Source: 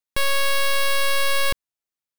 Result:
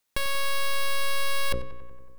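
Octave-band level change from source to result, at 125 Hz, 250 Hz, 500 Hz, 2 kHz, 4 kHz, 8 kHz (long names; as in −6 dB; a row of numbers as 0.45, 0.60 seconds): 0.0, +1.5, −7.5, −7.5, −7.0, −7.0 decibels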